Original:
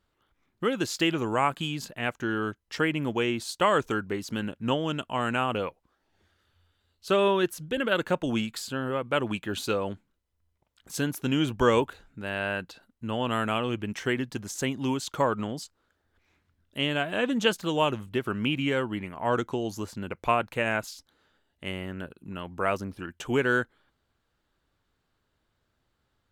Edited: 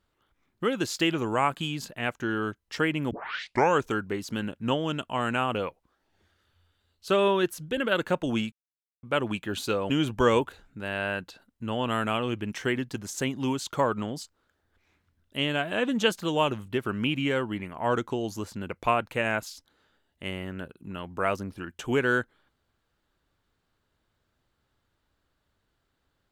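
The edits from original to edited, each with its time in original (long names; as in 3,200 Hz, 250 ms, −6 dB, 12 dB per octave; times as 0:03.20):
0:03.11: tape start 0.69 s
0:08.52–0:09.03: silence
0:09.90–0:11.31: remove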